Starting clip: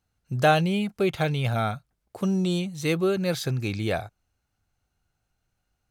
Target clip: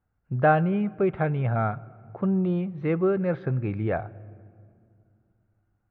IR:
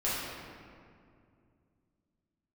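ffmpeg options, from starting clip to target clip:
-filter_complex "[0:a]lowpass=f=1.8k:w=0.5412,lowpass=f=1.8k:w=1.3066,asplit=2[a][b];[b]equalizer=f=100:t=o:w=0.33:g=9[c];[1:a]atrim=start_sample=2205[d];[c][d]afir=irnorm=-1:irlink=0,volume=-28dB[e];[a][e]amix=inputs=2:normalize=0"

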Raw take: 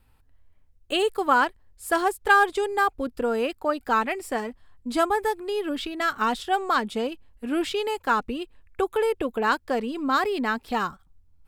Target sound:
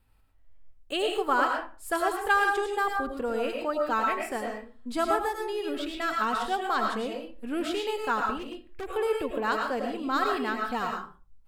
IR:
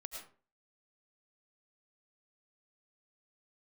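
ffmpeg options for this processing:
-filter_complex "[1:a]atrim=start_sample=2205,afade=t=out:st=0.43:d=0.01,atrim=end_sample=19404[a];[0:a][a]afir=irnorm=-1:irlink=0,asettb=1/sr,asplit=3[b][c][d];[b]atrim=end=8.384[e];[c]atrim=start=8.38:end=8.87,asetpts=PTS-STARTPTS,afade=t=in:d=0.004:c=qsin,afade=t=out:st=0.486:d=0.004:c=qsin,asoftclip=type=hard:threshold=-33dB[f];[d]atrim=start=8.866[g];[e][f]acrossfade=d=0.004:c1=hsin:c2=qsin[h];[h][g]acrossfade=d=0.004:c1=qsin:c2=hsin"

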